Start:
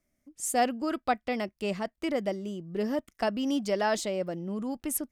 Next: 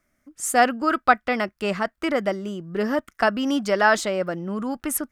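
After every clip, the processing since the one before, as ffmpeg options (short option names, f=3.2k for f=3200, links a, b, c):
-af "equalizer=f=1.4k:w=1.5:g=12.5,volume=5dB"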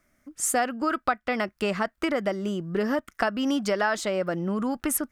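-af "acompressor=threshold=-26dB:ratio=4,volume=3dB"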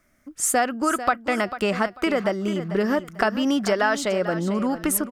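-af "aecho=1:1:444|888|1332:0.251|0.0603|0.0145,volume=3.5dB"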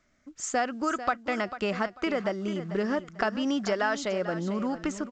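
-af "volume=-6dB" -ar 16000 -c:a pcm_mulaw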